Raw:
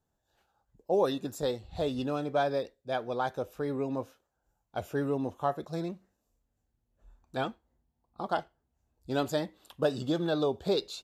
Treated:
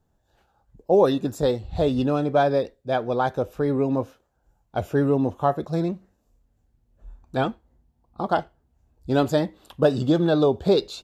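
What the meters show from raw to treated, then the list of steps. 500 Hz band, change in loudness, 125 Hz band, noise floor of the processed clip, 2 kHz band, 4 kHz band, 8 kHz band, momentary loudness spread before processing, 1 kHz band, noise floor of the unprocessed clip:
+9.0 dB, +9.0 dB, +11.5 dB, −69 dBFS, +6.5 dB, +4.5 dB, can't be measured, 11 LU, +8.0 dB, −81 dBFS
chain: spectral tilt −1.5 dB per octave
level +7.5 dB

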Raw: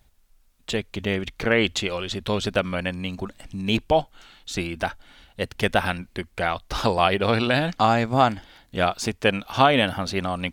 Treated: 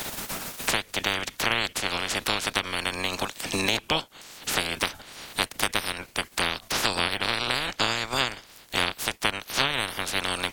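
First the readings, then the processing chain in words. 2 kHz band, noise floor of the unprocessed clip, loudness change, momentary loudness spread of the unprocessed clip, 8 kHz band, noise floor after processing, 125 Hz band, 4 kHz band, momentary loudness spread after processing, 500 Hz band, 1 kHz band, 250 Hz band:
0.0 dB, −59 dBFS, −3.0 dB, 12 LU, +7.5 dB, −53 dBFS, −10.0 dB, +3.0 dB, 6 LU, −9.5 dB, −6.5 dB, −9.5 dB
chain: ceiling on every frequency bin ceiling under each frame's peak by 30 dB
multiband upward and downward compressor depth 100%
level −5 dB

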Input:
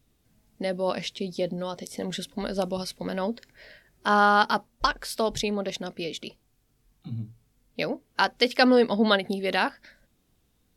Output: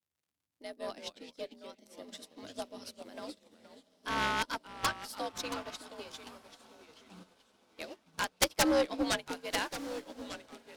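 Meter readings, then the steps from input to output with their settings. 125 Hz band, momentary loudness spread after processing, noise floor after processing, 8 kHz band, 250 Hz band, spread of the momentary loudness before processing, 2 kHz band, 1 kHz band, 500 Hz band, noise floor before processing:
−14.5 dB, 19 LU, below −85 dBFS, +2.0 dB, −10.5 dB, 16 LU, −9.0 dB, −11.5 dB, −11.0 dB, −69 dBFS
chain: stylus tracing distortion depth 0.022 ms
high-shelf EQ 3,100 Hz +8.5 dB
surface crackle 75 per second −35 dBFS
frequency shifter +65 Hz
harmonic generator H 3 −7 dB, 6 −24 dB, 7 −20 dB, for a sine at 0 dBFS
tape wow and flutter 26 cents
on a send: feedback delay with all-pass diffusion 1,334 ms, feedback 53%, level −10.5 dB
on the sum: delay with pitch and tempo change per echo 82 ms, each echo −2 semitones, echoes 3, each echo −6 dB
expander for the loud parts 2.5 to 1, over −37 dBFS
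level −4.5 dB

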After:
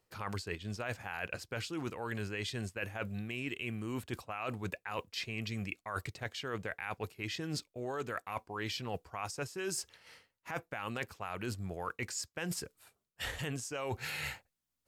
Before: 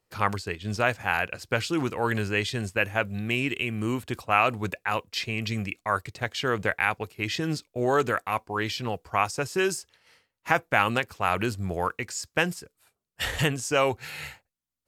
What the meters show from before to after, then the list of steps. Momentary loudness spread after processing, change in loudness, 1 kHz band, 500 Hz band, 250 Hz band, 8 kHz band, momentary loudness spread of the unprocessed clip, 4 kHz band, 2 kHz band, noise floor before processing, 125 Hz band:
4 LU, −12.0 dB, −15.0 dB, −13.0 dB, −10.5 dB, −6.5 dB, 8 LU, −9.5 dB, −13.0 dB, −83 dBFS, −9.5 dB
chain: brickwall limiter −15 dBFS, peak gain reduction 10 dB
reversed playback
downward compressor 12 to 1, threshold −37 dBFS, peak gain reduction 17 dB
reversed playback
level +2 dB

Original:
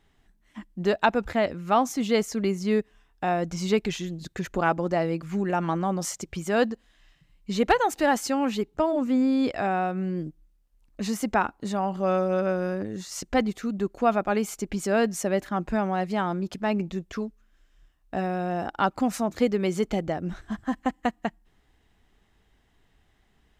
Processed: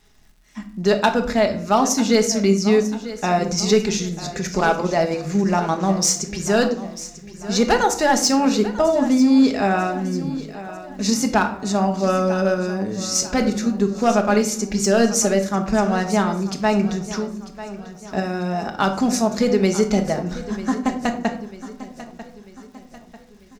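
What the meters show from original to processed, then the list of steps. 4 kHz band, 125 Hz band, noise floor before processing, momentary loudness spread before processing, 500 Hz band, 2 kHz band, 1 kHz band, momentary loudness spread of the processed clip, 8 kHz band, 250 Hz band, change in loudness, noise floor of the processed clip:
+11.0 dB, +7.0 dB, −65 dBFS, 10 LU, +6.5 dB, +6.0 dB, +5.0 dB, 14 LU, +14.5 dB, +7.5 dB, +7.0 dB, −46 dBFS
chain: parametric band 5,700 Hz +13 dB 0.9 octaves
notch filter 3,100 Hz, Q 9.5
in parallel at 0 dB: output level in coarse steps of 13 dB
on the sum: hard clipping −10.5 dBFS, distortion −23 dB
surface crackle 200 per second −48 dBFS
on a send: repeating echo 944 ms, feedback 47%, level −15 dB
on the sum: rectangular room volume 740 cubic metres, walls furnished, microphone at 1.4 metres

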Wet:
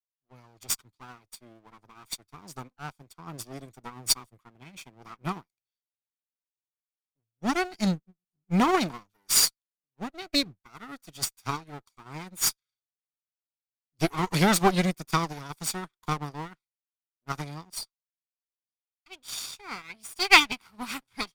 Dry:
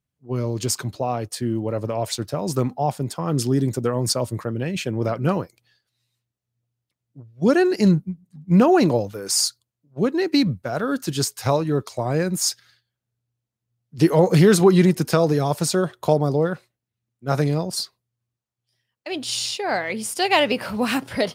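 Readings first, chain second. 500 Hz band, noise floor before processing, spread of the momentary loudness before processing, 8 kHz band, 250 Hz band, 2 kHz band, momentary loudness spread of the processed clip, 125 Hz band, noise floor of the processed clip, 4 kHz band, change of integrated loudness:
−15.0 dB, −84 dBFS, 11 LU, −3.0 dB, −11.0 dB, −0.5 dB, 23 LU, −13.0 dB, below −85 dBFS, −2.0 dB, −5.5 dB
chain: lower of the sound and its delayed copy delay 0.86 ms
tilt shelving filter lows −5 dB, about 1,100 Hz
expander for the loud parts 2.5 to 1, over −39 dBFS
level +2.5 dB

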